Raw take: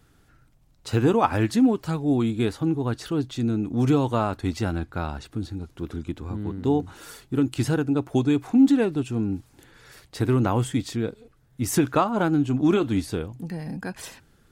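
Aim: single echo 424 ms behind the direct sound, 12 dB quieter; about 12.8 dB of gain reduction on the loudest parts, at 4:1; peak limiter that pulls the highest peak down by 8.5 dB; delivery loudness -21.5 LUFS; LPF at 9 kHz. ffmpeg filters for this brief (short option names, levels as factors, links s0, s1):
-af "lowpass=9000,acompressor=threshold=0.0355:ratio=4,alimiter=level_in=1.26:limit=0.0631:level=0:latency=1,volume=0.794,aecho=1:1:424:0.251,volume=5.01"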